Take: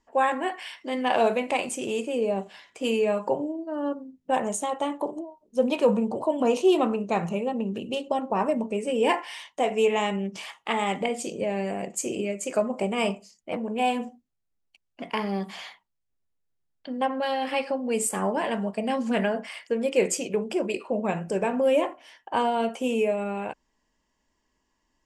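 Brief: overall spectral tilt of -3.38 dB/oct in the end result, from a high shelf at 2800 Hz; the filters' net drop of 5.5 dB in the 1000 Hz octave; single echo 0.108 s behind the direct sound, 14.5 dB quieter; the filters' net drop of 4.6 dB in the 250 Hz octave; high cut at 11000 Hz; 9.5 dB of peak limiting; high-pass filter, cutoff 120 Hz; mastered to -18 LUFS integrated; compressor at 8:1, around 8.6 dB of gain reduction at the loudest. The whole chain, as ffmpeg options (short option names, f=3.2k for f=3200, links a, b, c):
-af "highpass=120,lowpass=11k,equalizer=f=250:t=o:g=-5,equalizer=f=1k:t=o:g=-8,highshelf=f=2.8k:g=6.5,acompressor=threshold=-27dB:ratio=8,alimiter=limit=-23.5dB:level=0:latency=1,aecho=1:1:108:0.188,volume=16.5dB"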